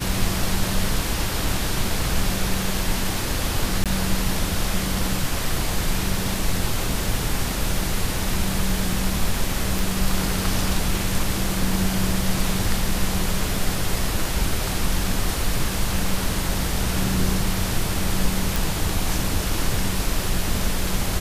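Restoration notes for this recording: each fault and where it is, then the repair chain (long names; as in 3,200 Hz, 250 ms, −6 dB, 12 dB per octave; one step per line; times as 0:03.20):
0:03.84–0:03.86: drop-out 17 ms
0:09.79: click
0:18.56: click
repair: click removal
repair the gap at 0:03.84, 17 ms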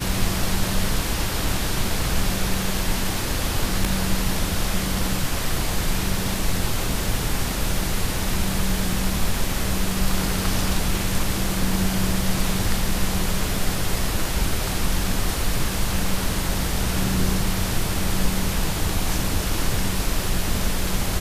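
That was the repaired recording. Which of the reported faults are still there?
none of them is left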